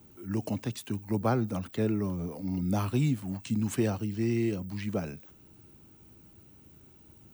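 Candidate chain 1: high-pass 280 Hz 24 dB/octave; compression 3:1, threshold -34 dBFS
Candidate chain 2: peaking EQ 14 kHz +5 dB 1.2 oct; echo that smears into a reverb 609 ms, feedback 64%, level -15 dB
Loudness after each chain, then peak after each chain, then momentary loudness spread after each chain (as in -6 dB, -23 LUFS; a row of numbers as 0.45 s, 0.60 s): -39.5 LUFS, -31.0 LUFS; -23.5 dBFS, -15.0 dBFS; 18 LU, 20 LU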